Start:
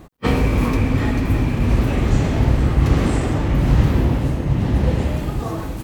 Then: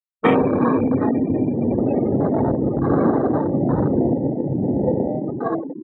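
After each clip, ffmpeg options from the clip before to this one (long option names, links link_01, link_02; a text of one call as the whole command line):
ffmpeg -i in.wav -af "highpass=270,afftfilt=real='re*gte(hypot(re,im),0.0891)':imag='im*gte(hypot(re,im),0.0891)':win_size=1024:overlap=0.75,afwtdn=0.0398,volume=7dB" out.wav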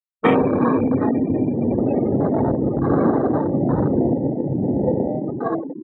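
ffmpeg -i in.wav -af anull out.wav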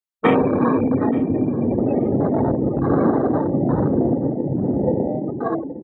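ffmpeg -i in.wav -af "aecho=1:1:879|1758:0.0891|0.0143" out.wav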